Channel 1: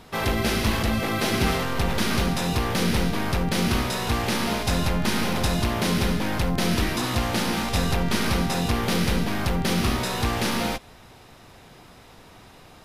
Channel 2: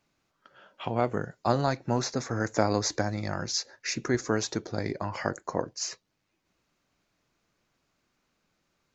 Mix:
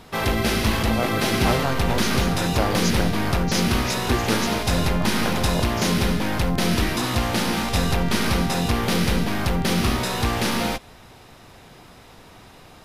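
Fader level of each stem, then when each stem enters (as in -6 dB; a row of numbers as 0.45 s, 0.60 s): +2.0 dB, 0.0 dB; 0.00 s, 0.00 s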